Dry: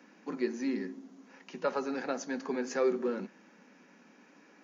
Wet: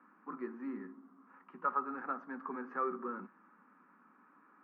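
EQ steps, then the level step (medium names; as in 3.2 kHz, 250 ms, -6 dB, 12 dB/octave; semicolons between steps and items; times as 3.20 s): high-pass 210 Hz 12 dB/octave; four-pole ladder low-pass 1.3 kHz, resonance 75%; peaking EQ 560 Hz -12.5 dB 1.4 oct; +8.5 dB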